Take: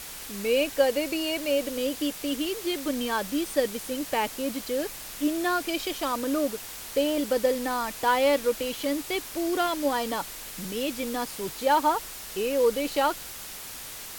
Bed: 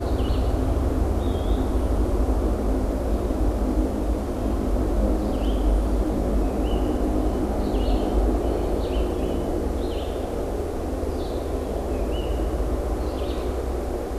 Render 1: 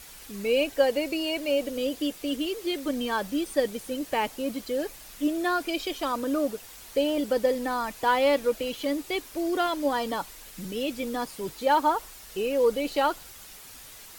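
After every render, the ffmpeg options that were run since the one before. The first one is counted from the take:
-af "afftdn=nr=8:nf=-40"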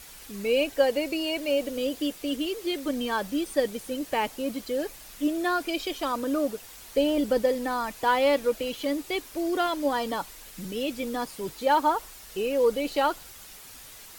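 -filter_complex "[0:a]asettb=1/sr,asplit=3[s0][s1][s2];[s0]atrim=end=1.384[s3];[s1]atrim=start=1.38:end=2.14,asetpts=PTS-STARTPTS,afade=t=in:d=0.004:c=qsin,afade=t=out:st=0.756:d=0.004:c=qsin,acrusher=bits=7:mix=0:aa=0.5[s4];[s2]atrim=start=2.136[s5];[s3][s4]acrossfade=d=0.004:c1=hsin:c2=qsin[s6];[s6][s5]acrossfade=d=0.004:c1=qsin:c2=hsin,asettb=1/sr,asplit=3[s7][s8][s9];[s7]atrim=end=6.974[s10];[s8]atrim=start=6.97:end=7.42,asetpts=PTS-STARTPTS,afade=t=in:d=0.004:c=qsin,afade=t=out:st=0.446:d=0.004:c=qsin,lowshelf=f=210:g=7.5[s11];[s9]atrim=start=7.416[s12];[s10][s11]acrossfade=d=0.004:c1=hsin:c2=qsin[s13];[s13][s12]acrossfade=d=0.004:c1=qsin:c2=hsin"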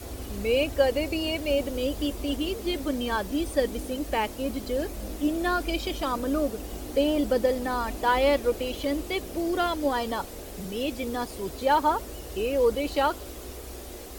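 -filter_complex "[1:a]volume=0.188[s0];[0:a][s0]amix=inputs=2:normalize=0"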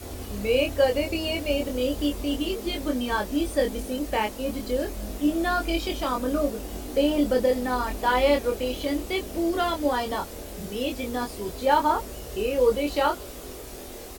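-filter_complex "[0:a]asplit=2[s0][s1];[s1]adelay=24,volume=0.631[s2];[s0][s2]amix=inputs=2:normalize=0"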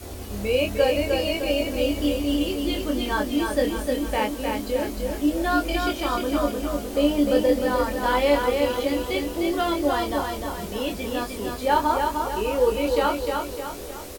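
-filter_complex "[0:a]asplit=2[s0][s1];[s1]adelay=14,volume=0.266[s2];[s0][s2]amix=inputs=2:normalize=0,aecho=1:1:304|608|912|1216|1520|1824:0.596|0.28|0.132|0.0618|0.0291|0.0137"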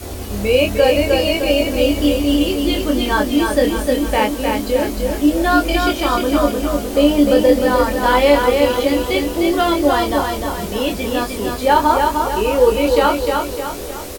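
-af "volume=2.51,alimiter=limit=0.794:level=0:latency=1"

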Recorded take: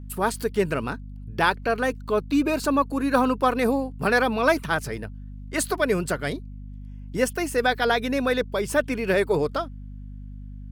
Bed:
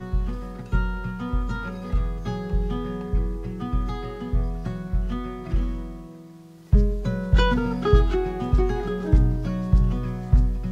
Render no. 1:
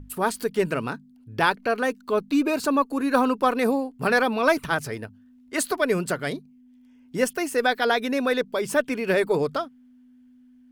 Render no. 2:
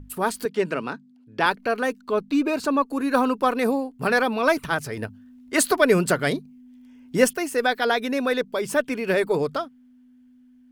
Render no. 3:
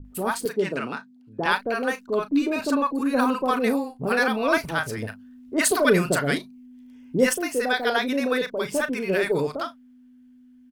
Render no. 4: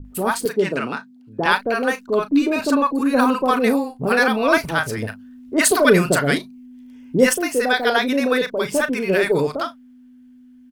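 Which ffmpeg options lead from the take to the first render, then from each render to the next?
-af "bandreject=f=50:t=h:w=6,bandreject=f=100:t=h:w=6,bandreject=f=150:t=h:w=6,bandreject=f=200:t=h:w=6"
-filter_complex "[0:a]asettb=1/sr,asplit=3[s0][s1][s2];[s0]atrim=end=0.454[s3];[s1]atrim=start=0.45:end=1.46,asetpts=PTS-STARTPTS,afade=t=in:d=0.004:c=qsin,afade=t=out:st=1.006:d=0.004:c=qsin,acrossover=split=150 7600:gain=0.0631 1 0.158[s4][s5][s6];[s4][s5][s6]amix=inputs=3:normalize=0[s7];[s2]atrim=start=1.456[s8];[s3][s7]acrossfade=d=0.004:c1=hsin:c2=qsin[s9];[s9][s8]acrossfade=d=0.004:c1=qsin:c2=hsin,asettb=1/sr,asplit=3[s10][s11][s12];[s10]atrim=end=2.004[s13];[s11]atrim=start=2:end=2.88,asetpts=PTS-STARTPTS,afade=t=in:d=0.004:c=qsin,afade=t=out:st=0.876:d=0.004:c=qsin,highshelf=f=9100:g=-9[s14];[s12]atrim=start=2.876[s15];[s13][s14]acrossfade=d=0.004:c1=hsin:c2=qsin[s16];[s16][s15]acrossfade=d=0.004:c1=qsin:c2=hsin,asettb=1/sr,asplit=3[s17][s18][s19];[s17]atrim=end=4.974[s20];[s18]atrim=start=4.97:end=7.34,asetpts=PTS-STARTPTS,afade=t=in:d=0.004:c=qsin,afade=t=out:st=2.366:d=0.004:c=qsin,acontrast=38[s21];[s19]atrim=start=7.336[s22];[s20][s21]acrossfade=d=0.004:c1=hsin:c2=qsin[s23];[s23][s22]acrossfade=d=0.004:c1=qsin:c2=hsin"
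-filter_complex "[0:a]asplit=2[s0][s1];[s1]adelay=36,volume=0.224[s2];[s0][s2]amix=inputs=2:normalize=0,acrossover=split=730[s3][s4];[s4]adelay=50[s5];[s3][s5]amix=inputs=2:normalize=0"
-af "volume=1.78"

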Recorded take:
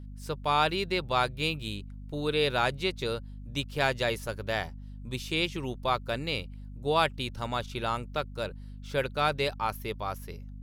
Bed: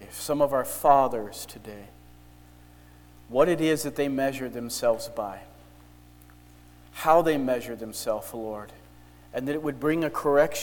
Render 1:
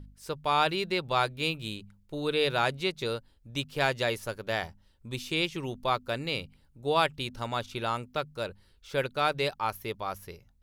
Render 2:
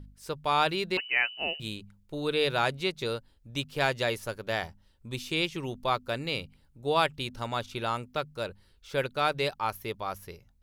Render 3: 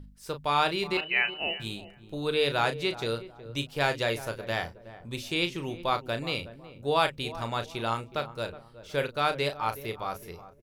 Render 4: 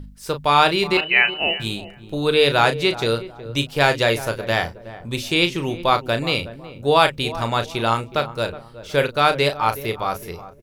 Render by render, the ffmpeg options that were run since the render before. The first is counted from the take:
-af "bandreject=f=50:t=h:w=4,bandreject=f=100:t=h:w=4,bandreject=f=150:t=h:w=4,bandreject=f=200:t=h:w=4,bandreject=f=250:t=h:w=4"
-filter_complex "[0:a]asettb=1/sr,asplit=3[s0][s1][s2];[s0]atrim=end=0.974[s3];[s1]atrim=start=0.97:end=1.6,asetpts=PTS-STARTPTS,afade=t=in:d=0.004:c=qsin,afade=t=out:st=0.626:d=0.004:c=qsin,lowpass=f=2600:t=q:w=0.5098,lowpass=f=2600:t=q:w=0.6013,lowpass=f=2600:t=q:w=0.9,lowpass=f=2600:t=q:w=2.563,afreqshift=-3100[s4];[s2]atrim=start=1.596[s5];[s3][s4]acrossfade=d=0.004:c1=hsin:c2=qsin[s6];[s6][s5]acrossfade=d=0.004:c1=qsin:c2=hsin"
-filter_complex "[0:a]asplit=2[s0][s1];[s1]adelay=35,volume=0.355[s2];[s0][s2]amix=inputs=2:normalize=0,asplit=2[s3][s4];[s4]adelay=369,lowpass=f=960:p=1,volume=0.211,asplit=2[s5][s6];[s6]adelay=369,lowpass=f=960:p=1,volume=0.38,asplit=2[s7][s8];[s8]adelay=369,lowpass=f=960:p=1,volume=0.38,asplit=2[s9][s10];[s10]adelay=369,lowpass=f=960:p=1,volume=0.38[s11];[s3][s5][s7][s9][s11]amix=inputs=5:normalize=0"
-af "volume=3.16,alimiter=limit=0.794:level=0:latency=1"

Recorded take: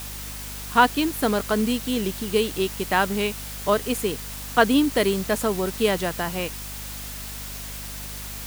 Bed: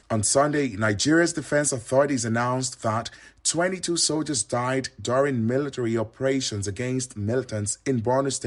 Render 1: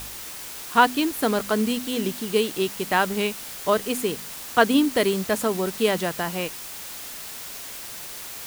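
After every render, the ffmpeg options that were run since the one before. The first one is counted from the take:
-af "bandreject=f=50:t=h:w=4,bandreject=f=100:t=h:w=4,bandreject=f=150:t=h:w=4,bandreject=f=200:t=h:w=4,bandreject=f=250:t=h:w=4"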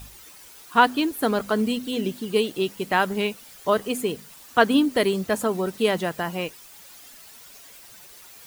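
-af "afftdn=nr=12:nf=-37"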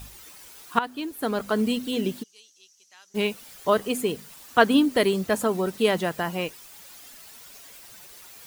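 -filter_complex "[0:a]asplit=3[s0][s1][s2];[s0]afade=t=out:st=2.22:d=0.02[s3];[s1]bandpass=f=6000:t=q:w=9.1,afade=t=in:st=2.22:d=0.02,afade=t=out:st=3.14:d=0.02[s4];[s2]afade=t=in:st=3.14:d=0.02[s5];[s3][s4][s5]amix=inputs=3:normalize=0,asplit=2[s6][s7];[s6]atrim=end=0.79,asetpts=PTS-STARTPTS,afade=t=out:st=0.786:d=0.004:c=hsin:silence=0.149624[s8];[s7]atrim=start=0.79,asetpts=PTS-STARTPTS,afade=t=in:d=0.9:silence=0.149624[s9];[s8][s9]concat=n=2:v=0:a=1"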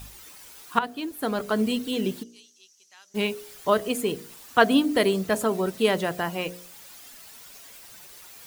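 -af "bandreject=f=59.39:t=h:w=4,bandreject=f=118.78:t=h:w=4,bandreject=f=178.17:t=h:w=4,bandreject=f=237.56:t=h:w=4,bandreject=f=296.95:t=h:w=4,bandreject=f=356.34:t=h:w=4,bandreject=f=415.73:t=h:w=4,bandreject=f=475.12:t=h:w=4,bandreject=f=534.51:t=h:w=4,bandreject=f=593.9:t=h:w=4,bandreject=f=653.29:t=h:w=4,bandreject=f=712.68:t=h:w=4"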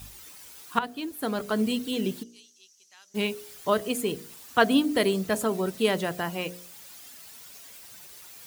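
-af "highpass=47,equalizer=f=860:w=0.33:g=-3"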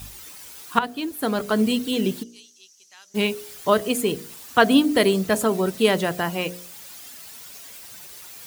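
-af "volume=1.88,alimiter=limit=0.708:level=0:latency=1"

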